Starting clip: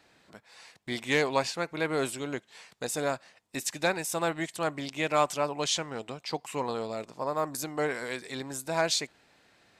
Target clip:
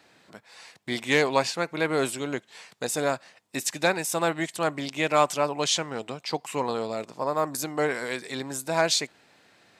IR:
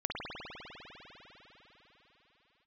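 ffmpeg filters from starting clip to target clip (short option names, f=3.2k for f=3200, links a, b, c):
-af "highpass=99,volume=4dB"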